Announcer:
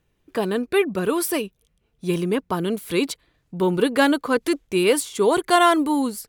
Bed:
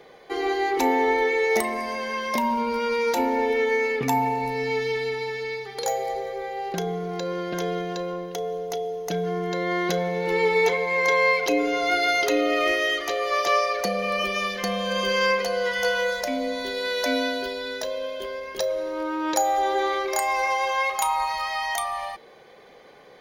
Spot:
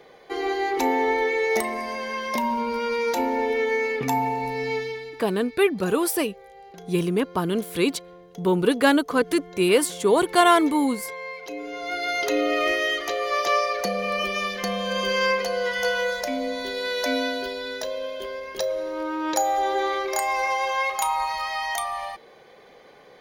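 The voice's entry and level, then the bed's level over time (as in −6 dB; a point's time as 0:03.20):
4.85 s, −0.5 dB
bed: 0:04.75 −1 dB
0:05.26 −15.5 dB
0:11.31 −15.5 dB
0:12.39 −0.5 dB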